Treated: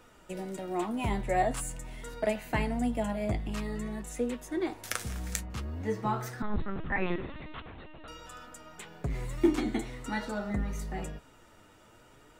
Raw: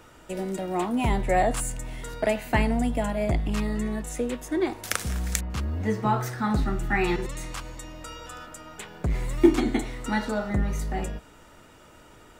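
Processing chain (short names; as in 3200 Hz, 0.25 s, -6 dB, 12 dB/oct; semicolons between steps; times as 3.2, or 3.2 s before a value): flange 0.47 Hz, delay 3.9 ms, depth 6.3 ms, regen +55%; 6.42–8.08 LPC vocoder at 8 kHz pitch kept; gain -2 dB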